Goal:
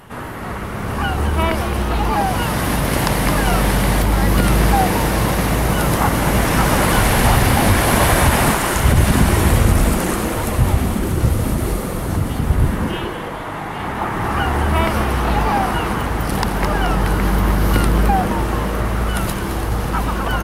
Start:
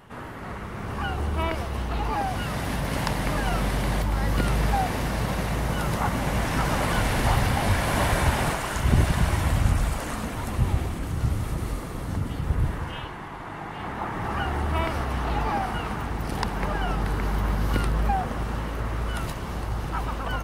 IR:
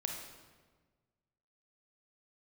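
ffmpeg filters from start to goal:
-filter_complex "[0:a]equalizer=frequency=12000:width_type=o:width=0.76:gain=8,asplit=8[link_01][link_02][link_03][link_04][link_05][link_06][link_07][link_08];[link_02]adelay=215,afreqshift=140,volume=-10dB[link_09];[link_03]adelay=430,afreqshift=280,volume=-14.7dB[link_10];[link_04]adelay=645,afreqshift=420,volume=-19.5dB[link_11];[link_05]adelay=860,afreqshift=560,volume=-24.2dB[link_12];[link_06]adelay=1075,afreqshift=700,volume=-28.9dB[link_13];[link_07]adelay=1290,afreqshift=840,volume=-33.7dB[link_14];[link_08]adelay=1505,afreqshift=980,volume=-38.4dB[link_15];[link_01][link_09][link_10][link_11][link_12][link_13][link_14][link_15]amix=inputs=8:normalize=0,alimiter=level_in=10dB:limit=-1dB:release=50:level=0:latency=1,volume=-1.5dB"

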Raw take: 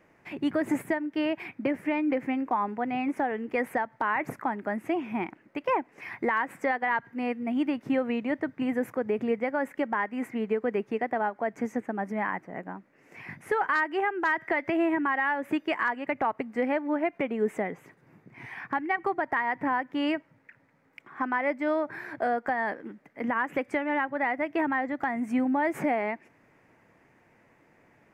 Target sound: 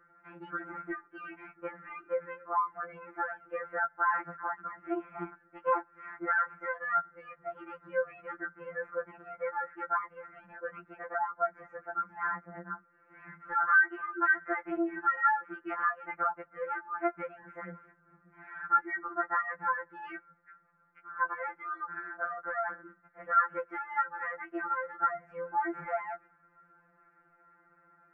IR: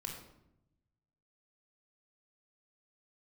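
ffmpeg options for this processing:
-af "lowpass=frequency=1400:width_type=q:width=15,afftfilt=real='re*2.83*eq(mod(b,8),0)':imag='im*2.83*eq(mod(b,8),0)':win_size=2048:overlap=0.75,volume=-8dB"

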